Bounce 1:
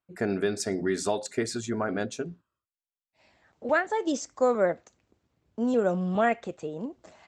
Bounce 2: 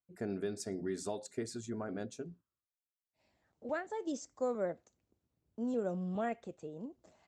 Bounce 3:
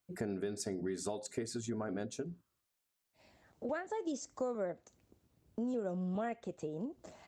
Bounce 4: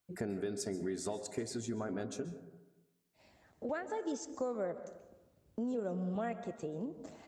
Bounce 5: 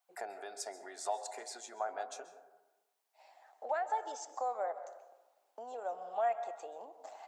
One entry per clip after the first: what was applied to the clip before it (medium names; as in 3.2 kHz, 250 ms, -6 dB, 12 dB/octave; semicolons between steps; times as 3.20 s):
peaking EQ 1.9 kHz -7.5 dB 3 oct; trim -8.5 dB
compression 3:1, threshold -49 dBFS, peak gain reduction 14 dB; trim +10.5 dB
plate-style reverb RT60 1.1 s, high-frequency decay 0.3×, pre-delay 120 ms, DRR 11 dB
ladder high-pass 700 Hz, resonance 70%; trim +11 dB